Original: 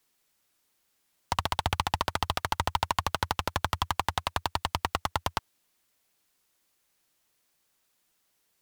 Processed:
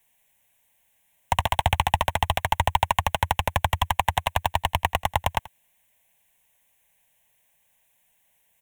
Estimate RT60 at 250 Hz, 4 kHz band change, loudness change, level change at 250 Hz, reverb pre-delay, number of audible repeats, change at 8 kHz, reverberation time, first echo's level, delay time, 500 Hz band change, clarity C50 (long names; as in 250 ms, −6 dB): no reverb audible, +3.5 dB, +6.0 dB, +2.5 dB, no reverb audible, 1, +3.5 dB, no reverb audible, −19.5 dB, 84 ms, +6.5 dB, no reverb audible